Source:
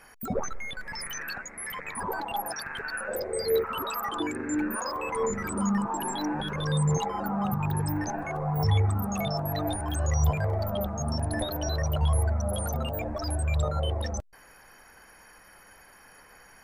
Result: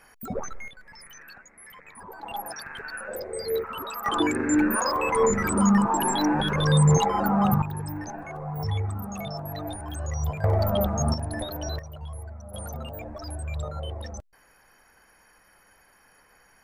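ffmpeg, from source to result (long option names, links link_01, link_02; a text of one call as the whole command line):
ffmpeg -i in.wav -af "asetnsamples=nb_out_samples=441:pad=0,asendcmd='0.68 volume volume -11dB;2.23 volume volume -2.5dB;4.06 volume volume 7dB;7.62 volume volume -4.5dB;10.44 volume volume 6dB;11.14 volume volume -2dB;11.79 volume volume -13.5dB;12.54 volume volume -5.5dB',volume=-2dB" out.wav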